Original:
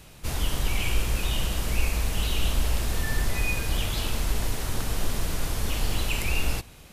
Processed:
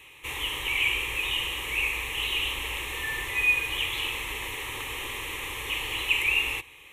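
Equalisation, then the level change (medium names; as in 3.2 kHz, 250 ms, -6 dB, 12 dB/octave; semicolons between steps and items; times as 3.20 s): high-pass 180 Hz 6 dB/octave; peaking EQ 2.4 kHz +13.5 dB 2.2 oct; static phaser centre 990 Hz, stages 8; -4.0 dB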